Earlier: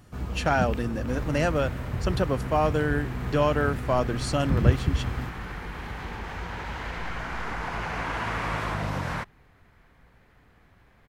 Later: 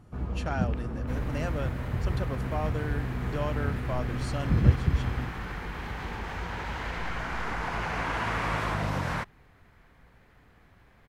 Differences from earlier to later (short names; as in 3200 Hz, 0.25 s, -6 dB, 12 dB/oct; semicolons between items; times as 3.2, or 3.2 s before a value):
speech -10.0 dB; first sound: add LPF 1200 Hz 6 dB/oct